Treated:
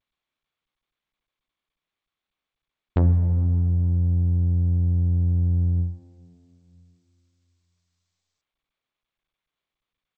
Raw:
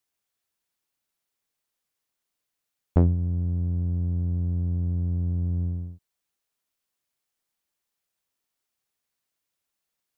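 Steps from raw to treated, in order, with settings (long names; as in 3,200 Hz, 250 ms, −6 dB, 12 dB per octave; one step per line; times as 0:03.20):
low-pass that shuts in the quiet parts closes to 880 Hz, open at −27.5 dBFS
mains-hum notches 60/120/180/240/300 Hz
downward expander −27 dBFS
dynamic equaliser 900 Hz, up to +3 dB, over −54 dBFS, Q 4.4
in parallel at −0.5 dB: compressor whose output falls as the input rises −34 dBFS, ratio −1
on the sum: soft clipping −10.5 dBFS, distortion −27 dB
high-frequency loss of the air 75 metres
far-end echo of a speakerphone 160 ms, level −19 dB
on a send at −8 dB: convolution reverb RT60 2.8 s, pre-delay 23 ms
on the sum: G.722 64 kbit/s 16,000 Hz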